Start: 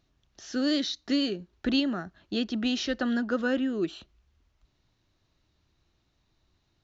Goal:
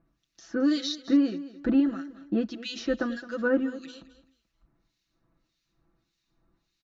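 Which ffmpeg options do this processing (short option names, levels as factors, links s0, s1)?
-filter_complex "[0:a]aecho=1:1:6:0.87,acrossover=split=1900[s0][s1];[s0]aeval=exprs='val(0)*(1-1/2+1/2*cos(2*PI*1.7*n/s))':c=same[s2];[s1]aeval=exprs='val(0)*(1-1/2-1/2*cos(2*PI*1.7*n/s))':c=same[s3];[s2][s3]amix=inputs=2:normalize=0,equalizer=f=250:t=o:w=0.33:g=12,equalizer=f=1250:t=o:w=0.33:g=4,equalizer=f=3150:t=o:w=0.33:g=-5,aeval=exprs='0.224*(cos(1*acos(clip(val(0)/0.224,-1,1)))-cos(1*PI/2))+0.00158*(cos(7*acos(clip(val(0)/0.224,-1,1)))-cos(7*PI/2))':c=same,aecho=1:1:216|432|648:0.158|0.0428|0.0116"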